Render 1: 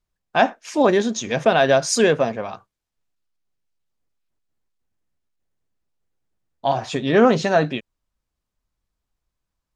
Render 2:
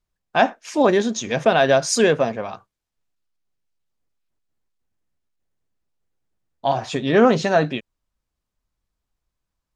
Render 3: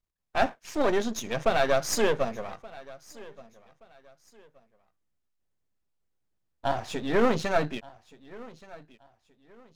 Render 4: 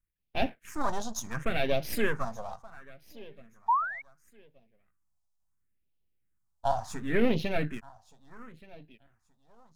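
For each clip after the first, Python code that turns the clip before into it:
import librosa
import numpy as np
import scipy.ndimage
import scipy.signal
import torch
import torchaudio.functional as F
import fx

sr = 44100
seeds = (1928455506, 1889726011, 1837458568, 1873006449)

y1 = x
y2 = np.where(y1 < 0.0, 10.0 ** (-12.0 / 20.0) * y1, y1)
y2 = fx.echo_feedback(y2, sr, ms=1175, feedback_pct=29, wet_db=-21)
y2 = y2 * 10.0 ** (-4.0 / 20.0)
y3 = fx.spec_paint(y2, sr, seeds[0], shape='rise', start_s=3.68, length_s=0.34, low_hz=880.0, high_hz=2300.0, level_db=-24.0)
y3 = fx.phaser_stages(y3, sr, stages=4, low_hz=340.0, high_hz=1300.0, hz=0.71, feedback_pct=35)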